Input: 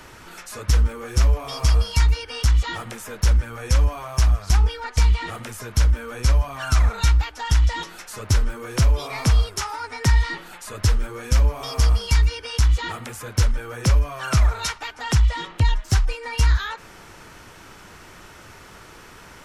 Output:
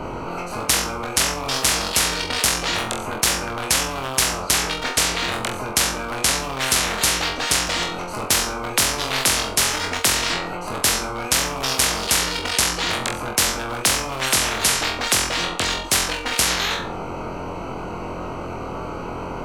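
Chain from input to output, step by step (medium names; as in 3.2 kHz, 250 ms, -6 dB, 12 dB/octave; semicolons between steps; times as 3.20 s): local Wiener filter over 25 samples; flutter echo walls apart 3.9 m, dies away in 0.34 s; spectrum-flattening compressor 10:1; trim +3 dB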